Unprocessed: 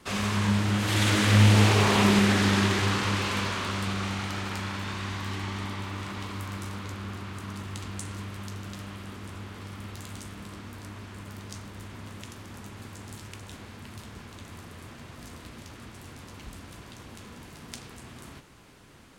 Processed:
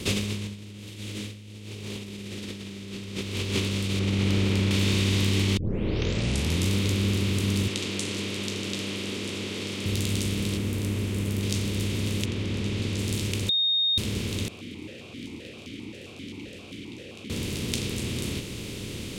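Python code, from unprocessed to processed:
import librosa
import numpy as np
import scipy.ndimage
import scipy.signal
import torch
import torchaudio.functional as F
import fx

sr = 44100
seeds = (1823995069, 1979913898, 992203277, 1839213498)

y = fx.env_flatten(x, sr, amount_pct=70, at=(0.54, 0.98), fade=0.02)
y = fx.reverb_throw(y, sr, start_s=2.21, length_s=1.06, rt60_s=2.0, drr_db=-1.0)
y = fx.lowpass(y, sr, hz=1400.0, slope=6, at=(3.99, 4.71))
y = fx.bandpass_edges(y, sr, low_hz=350.0, high_hz=7000.0, at=(7.68, 9.86))
y = fx.peak_eq(y, sr, hz=4400.0, db=-10.5, octaves=1.6, at=(10.57, 11.43))
y = fx.lowpass(y, sr, hz=fx.line((12.24, 2300.0), (12.97, 5300.0)), slope=12, at=(12.24, 12.97), fade=0.02)
y = fx.vowel_held(y, sr, hz=7.6, at=(14.48, 17.3))
y = fx.edit(y, sr, fx.tape_start(start_s=5.57, length_s=1.13),
    fx.bleep(start_s=13.49, length_s=0.49, hz=3700.0, db=-22.5), tone=tone)
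y = fx.bin_compress(y, sr, power=0.6)
y = fx.band_shelf(y, sr, hz=1100.0, db=-14.5, octaves=1.7)
y = fx.over_compress(y, sr, threshold_db=-26.0, ratio=-0.5)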